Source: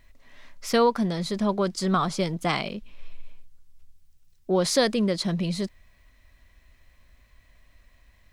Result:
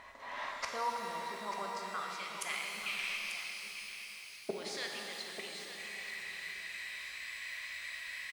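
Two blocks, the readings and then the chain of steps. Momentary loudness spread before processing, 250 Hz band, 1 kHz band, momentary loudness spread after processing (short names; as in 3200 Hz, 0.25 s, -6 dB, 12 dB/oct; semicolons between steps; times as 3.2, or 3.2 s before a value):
13 LU, -26.5 dB, -9.5 dB, 7 LU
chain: high shelf 3500 Hz +11.5 dB; in parallel at 0 dB: compressor, threshold -30 dBFS, peak gain reduction 14.5 dB; on the sum: flipped gate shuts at -16 dBFS, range -26 dB; band-pass sweep 950 Hz -> 2200 Hz, 1.58–2.13; on a send: echo 0.89 s -10.5 dB; on the sum: shimmer reverb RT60 3.5 s, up +12 st, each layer -8 dB, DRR 0 dB; gain +13 dB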